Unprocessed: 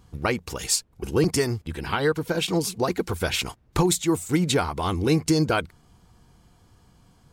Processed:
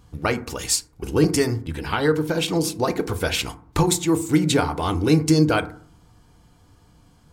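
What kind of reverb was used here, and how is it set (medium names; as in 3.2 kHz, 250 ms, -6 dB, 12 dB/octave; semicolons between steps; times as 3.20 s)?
FDN reverb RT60 0.5 s, low-frequency decay 1.4×, high-frequency decay 0.4×, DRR 9 dB; trim +1.5 dB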